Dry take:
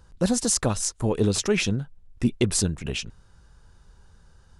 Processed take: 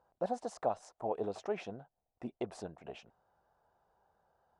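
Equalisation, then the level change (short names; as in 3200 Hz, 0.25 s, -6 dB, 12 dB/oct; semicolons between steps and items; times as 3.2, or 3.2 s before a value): band-pass 710 Hz, Q 4.7; +2.0 dB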